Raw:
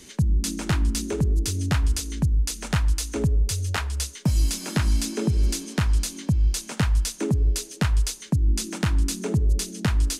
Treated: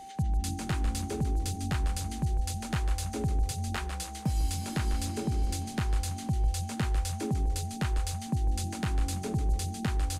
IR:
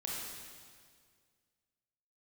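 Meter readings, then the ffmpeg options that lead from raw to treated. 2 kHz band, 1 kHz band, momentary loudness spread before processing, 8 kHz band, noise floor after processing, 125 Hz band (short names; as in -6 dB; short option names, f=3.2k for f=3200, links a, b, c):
-7.5 dB, 0.0 dB, 2 LU, -8.5 dB, -39 dBFS, -7.0 dB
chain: -filter_complex "[0:a]equalizer=f=5.7k:w=3.5:g=-4,asplit=6[a][b][c][d][e][f];[b]adelay=149,afreqshift=-140,volume=-8dB[g];[c]adelay=298,afreqshift=-280,volume=-15.3dB[h];[d]adelay=447,afreqshift=-420,volume=-22.7dB[i];[e]adelay=596,afreqshift=-560,volume=-30dB[j];[f]adelay=745,afreqshift=-700,volume=-37.3dB[k];[a][g][h][i][j][k]amix=inputs=6:normalize=0,aeval=exprs='val(0)+0.0178*sin(2*PI*780*n/s)':c=same,volume=-8dB"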